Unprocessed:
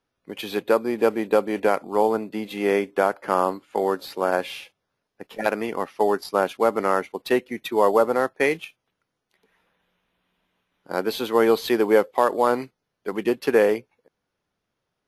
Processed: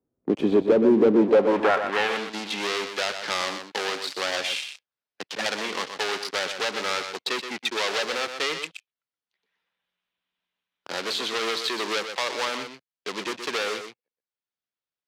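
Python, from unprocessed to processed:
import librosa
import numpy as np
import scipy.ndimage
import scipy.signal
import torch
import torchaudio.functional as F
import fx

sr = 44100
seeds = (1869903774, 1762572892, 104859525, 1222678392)

p1 = fx.riaa(x, sr, side='playback')
p2 = fx.rider(p1, sr, range_db=10, speed_s=2.0)
p3 = fx.leveller(p2, sr, passes=5)
p4 = fx.filter_sweep_bandpass(p3, sr, from_hz=340.0, to_hz=4700.0, start_s=1.14, end_s=2.31, q=1.2)
p5 = p4 + fx.echo_single(p4, sr, ms=123, db=-9.0, dry=0)
p6 = fx.band_squash(p5, sr, depth_pct=40)
y = F.gain(torch.from_numpy(p6), -3.5).numpy()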